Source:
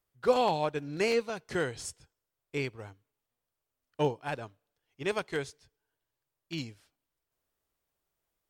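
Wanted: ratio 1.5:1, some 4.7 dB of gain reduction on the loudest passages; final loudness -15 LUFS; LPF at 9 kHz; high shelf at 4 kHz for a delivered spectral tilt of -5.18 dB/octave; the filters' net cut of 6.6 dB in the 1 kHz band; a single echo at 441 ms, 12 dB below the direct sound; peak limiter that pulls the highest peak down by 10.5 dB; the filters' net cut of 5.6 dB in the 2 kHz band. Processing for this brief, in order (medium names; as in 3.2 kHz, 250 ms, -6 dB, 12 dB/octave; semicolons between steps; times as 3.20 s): low-pass 9 kHz; peaking EQ 1 kHz -8.5 dB; peaking EQ 2 kHz -4 dB; treble shelf 4 kHz -3 dB; compression 1.5:1, threshold -34 dBFS; peak limiter -31 dBFS; delay 441 ms -12 dB; trim +27.5 dB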